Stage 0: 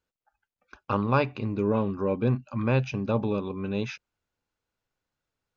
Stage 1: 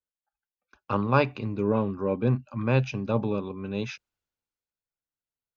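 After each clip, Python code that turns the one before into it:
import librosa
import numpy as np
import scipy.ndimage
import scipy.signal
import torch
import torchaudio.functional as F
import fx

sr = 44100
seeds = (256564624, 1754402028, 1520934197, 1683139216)

y = fx.band_widen(x, sr, depth_pct=40)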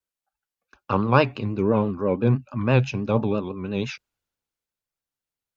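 y = fx.vibrato(x, sr, rate_hz=6.0, depth_cents=92.0)
y = F.gain(torch.from_numpy(y), 4.0).numpy()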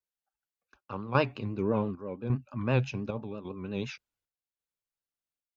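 y = fx.chopper(x, sr, hz=0.87, depth_pct=60, duty_pct=70)
y = F.gain(torch.from_numpy(y), -7.5).numpy()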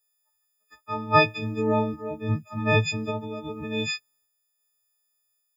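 y = fx.freq_snap(x, sr, grid_st=6)
y = F.gain(torch.from_numpy(y), 4.0).numpy()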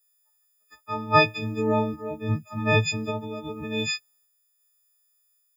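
y = fx.high_shelf(x, sr, hz=6400.0, db=6.5)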